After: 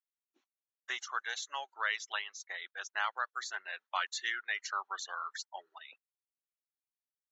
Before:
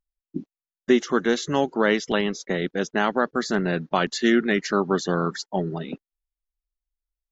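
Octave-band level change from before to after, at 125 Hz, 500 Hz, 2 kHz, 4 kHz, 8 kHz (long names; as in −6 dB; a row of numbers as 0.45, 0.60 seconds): below −40 dB, −30.0 dB, −8.0 dB, −8.5 dB, can't be measured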